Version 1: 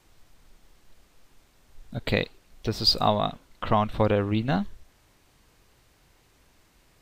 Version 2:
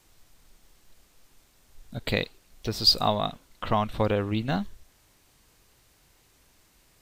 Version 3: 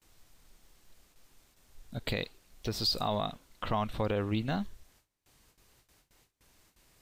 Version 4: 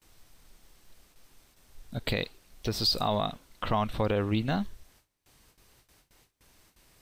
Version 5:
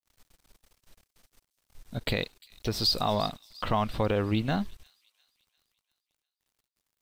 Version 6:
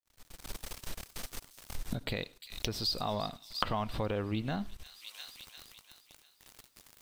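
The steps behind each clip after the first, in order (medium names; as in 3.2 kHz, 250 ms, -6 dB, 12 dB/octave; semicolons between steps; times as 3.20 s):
treble shelf 4.5 kHz +8 dB; trim -2.5 dB
gate with hold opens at -51 dBFS; peak limiter -17.5 dBFS, peak gain reduction 9 dB; trim -3 dB
band-stop 7 kHz, Q 17; trim +3.5 dB
crossover distortion -54.5 dBFS; feedback echo behind a high-pass 349 ms, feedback 48%, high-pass 5 kHz, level -14 dB; trim +1 dB
recorder AGC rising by 58 dB/s; reverberation RT60 0.20 s, pre-delay 78 ms, DRR 22 dB; trim -7 dB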